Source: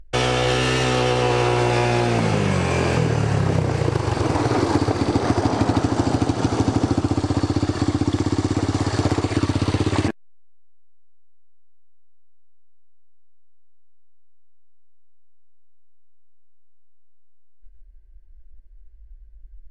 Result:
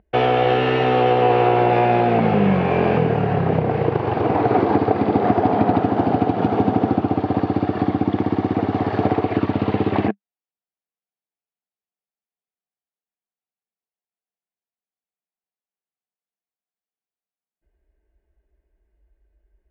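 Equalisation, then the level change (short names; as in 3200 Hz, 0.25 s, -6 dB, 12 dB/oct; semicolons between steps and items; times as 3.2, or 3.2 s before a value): speaker cabinet 110–3000 Hz, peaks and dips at 200 Hz +10 dB, 440 Hz +7 dB, 730 Hz +10 dB; -1.0 dB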